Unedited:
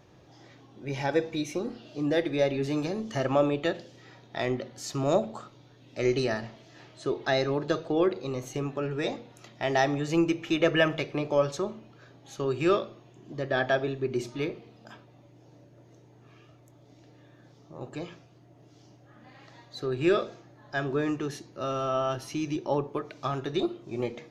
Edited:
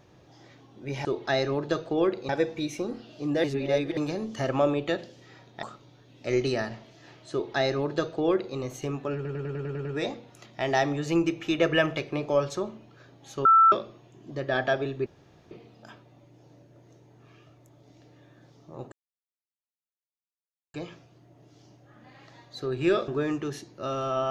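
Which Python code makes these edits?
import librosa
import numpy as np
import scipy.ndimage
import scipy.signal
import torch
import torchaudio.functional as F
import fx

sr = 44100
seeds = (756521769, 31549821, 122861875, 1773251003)

y = fx.edit(x, sr, fx.reverse_span(start_s=2.2, length_s=0.53),
    fx.cut(start_s=4.39, length_s=0.96),
    fx.duplicate(start_s=7.04, length_s=1.24, to_s=1.05),
    fx.stutter(start_s=8.87, slice_s=0.1, count=8),
    fx.bleep(start_s=12.47, length_s=0.27, hz=1330.0, db=-13.5),
    fx.room_tone_fill(start_s=14.08, length_s=0.45),
    fx.insert_silence(at_s=17.94, length_s=1.82),
    fx.cut(start_s=20.28, length_s=0.58), tone=tone)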